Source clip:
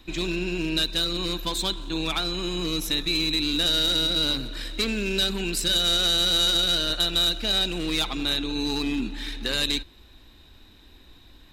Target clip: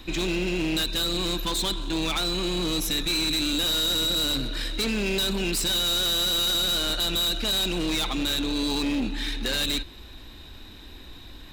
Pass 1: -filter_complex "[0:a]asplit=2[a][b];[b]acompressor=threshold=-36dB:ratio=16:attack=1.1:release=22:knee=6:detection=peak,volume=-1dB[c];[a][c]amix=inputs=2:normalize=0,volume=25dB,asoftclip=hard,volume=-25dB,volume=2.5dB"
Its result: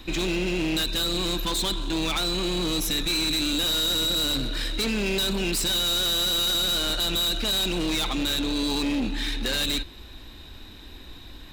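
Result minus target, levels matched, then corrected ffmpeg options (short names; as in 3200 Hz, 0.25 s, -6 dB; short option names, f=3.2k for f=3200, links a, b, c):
compressor: peak gain reduction -8 dB
-filter_complex "[0:a]asplit=2[a][b];[b]acompressor=threshold=-44.5dB:ratio=16:attack=1.1:release=22:knee=6:detection=peak,volume=-1dB[c];[a][c]amix=inputs=2:normalize=0,volume=25dB,asoftclip=hard,volume=-25dB,volume=2.5dB"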